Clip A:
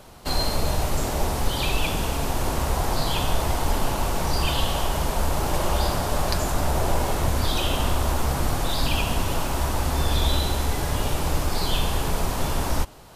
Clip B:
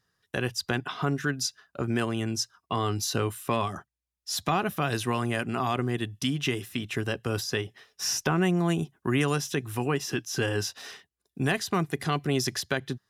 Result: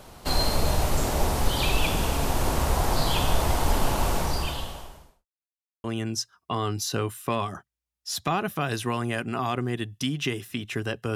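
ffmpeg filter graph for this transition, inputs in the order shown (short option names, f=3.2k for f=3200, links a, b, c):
-filter_complex "[0:a]apad=whole_dur=11.15,atrim=end=11.15,asplit=2[a][b];[a]atrim=end=5.26,asetpts=PTS-STARTPTS,afade=t=out:st=4.13:d=1.13:c=qua[c];[b]atrim=start=5.26:end=5.84,asetpts=PTS-STARTPTS,volume=0[d];[1:a]atrim=start=2.05:end=7.36,asetpts=PTS-STARTPTS,afade=t=in:d=0.004:c=hsin[e];[c][d][e]concat=n=3:v=0:a=1"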